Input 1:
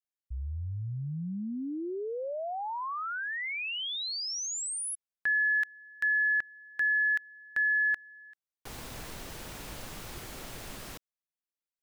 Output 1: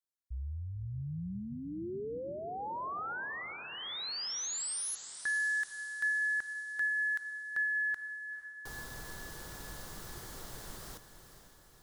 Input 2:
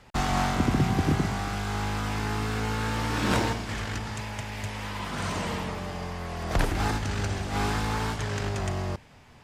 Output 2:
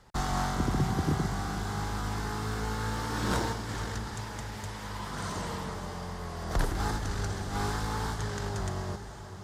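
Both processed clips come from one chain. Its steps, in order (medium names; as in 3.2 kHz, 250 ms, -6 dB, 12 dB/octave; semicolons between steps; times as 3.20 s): fifteen-band graphic EQ 100 Hz -3 dB, 250 Hz -5 dB, 630 Hz -4 dB, 2.5 kHz -11 dB; on a send: echo that smears into a reverb 473 ms, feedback 58%, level -11 dB; on the sum: trim -2 dB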